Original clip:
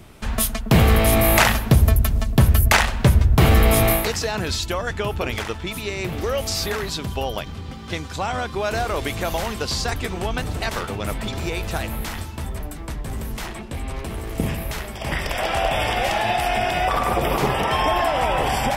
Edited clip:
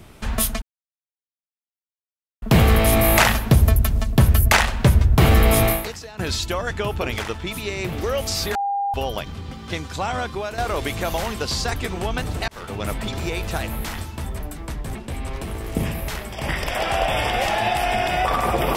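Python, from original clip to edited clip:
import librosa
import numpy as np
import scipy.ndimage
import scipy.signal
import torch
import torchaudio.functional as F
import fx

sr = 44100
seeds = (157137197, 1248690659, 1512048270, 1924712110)

y = fx.edit(x, sr, fx.insert_silence(at_s=0.62, length_s=1.8),
    fx.fade_out_to(start_s=3.84, length_s=0.55, curve='qua', floor_db=-15.5),
    fx.bleep(start_s=6.75, length_s=0.39, hz=802.0, db=-20.0),
    fx.fade_out_to(start_s=8.48, length_s=0.3, floor_db=-11.0),
    fx.fade_in_span(start_s=10.68, length_s=0.32),
    fx.cut(start_s=13.15, length_s=0.43), tone=tone)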